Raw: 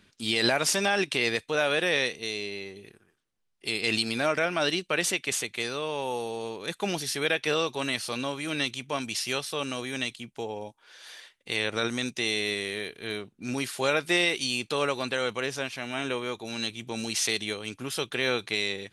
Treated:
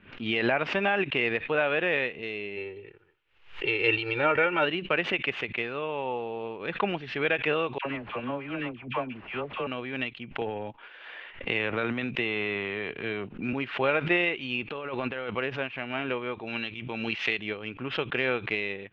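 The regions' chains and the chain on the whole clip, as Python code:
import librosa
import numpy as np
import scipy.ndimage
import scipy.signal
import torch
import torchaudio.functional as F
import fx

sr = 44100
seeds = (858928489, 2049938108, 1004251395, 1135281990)

y = fx.comb(x, sr, ms=2.2, depth=0.98, at=(2.56, 4.64), fade=0.02)
y = fx.dmg_noise_colour(y, sr, seeds[0], colour='violet', level_db=-54.0, at=(2.56, 4.64), fade=0.02)
y = fx.chain(y, sr, fx.dead_time(dead_ms=0.097),
    fx.lowpass(hz=2100.0, slope=6),
    fx.dispersion(late='lows', ms=77.0, hz=970.0), at=(7.78, 9.67))
y = fx.chain(y, sr, fx.transient(attack_db=1, sustain_db=9),
    fx.band_squash(depth_pct=40), at=(10.41, 13.53))
y = fx.chain(y, sr, fx.lowpass(hz=7900.0, slope=12),
    fx.over_compress(threshold_db=-33.0, ratio=-1.0), at=(14.62, 15.31))
y = fx.chain(y, sr, fx.tilt_shelf(db=-4.0, hz=1500.0),
    fx.pre_swell(db_per_s=41.0), at=(16.47, 17.39))
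y = scipy.signal.sosfilt(scipy.signal.cheby1(4, 1.0, 2800.0, 'lowpass', fs=sr, output='sos'), y)
y = fx.transient(y, sr, attack_db=3, sustain_db=-2)
y = fx.pre_swell(y, sr, db_per_s=120.0)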